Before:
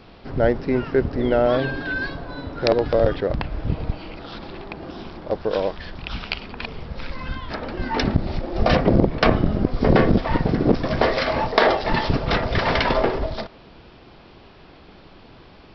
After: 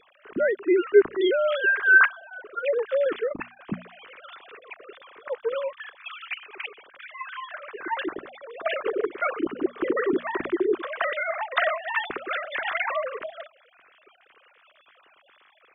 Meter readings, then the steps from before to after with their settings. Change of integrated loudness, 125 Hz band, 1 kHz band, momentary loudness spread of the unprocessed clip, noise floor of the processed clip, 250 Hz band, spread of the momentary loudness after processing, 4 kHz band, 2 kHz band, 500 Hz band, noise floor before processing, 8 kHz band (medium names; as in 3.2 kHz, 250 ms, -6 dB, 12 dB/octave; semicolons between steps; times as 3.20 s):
-3.5 dB, -26.5 dB, -6.5 dB, 16 LU, -60 dBFS, -8.5 dB, 21 LU, -8.5 dB, +4.0 dB, -3.5 dB, -47 dBFS, no reading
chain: formants replaced by sine waves; high-order bell 650 Hz -10 dB 1.2 oct; hum notches 60/120/180/240 Hz